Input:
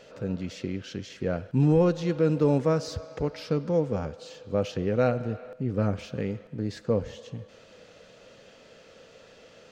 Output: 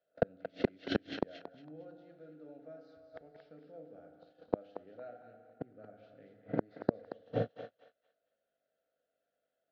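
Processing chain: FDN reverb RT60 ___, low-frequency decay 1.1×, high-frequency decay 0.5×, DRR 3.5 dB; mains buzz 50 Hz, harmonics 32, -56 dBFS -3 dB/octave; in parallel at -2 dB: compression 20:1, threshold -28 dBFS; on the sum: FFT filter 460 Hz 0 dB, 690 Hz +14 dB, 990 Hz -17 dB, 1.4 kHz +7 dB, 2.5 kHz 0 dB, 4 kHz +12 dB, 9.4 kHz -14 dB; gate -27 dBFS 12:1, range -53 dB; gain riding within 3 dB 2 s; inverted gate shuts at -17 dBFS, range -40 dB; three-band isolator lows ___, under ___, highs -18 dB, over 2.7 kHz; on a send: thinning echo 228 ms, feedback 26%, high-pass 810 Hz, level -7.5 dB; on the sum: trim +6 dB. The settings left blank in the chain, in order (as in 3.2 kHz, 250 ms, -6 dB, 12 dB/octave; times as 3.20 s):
1.3 s, -14 dB, 180 Hz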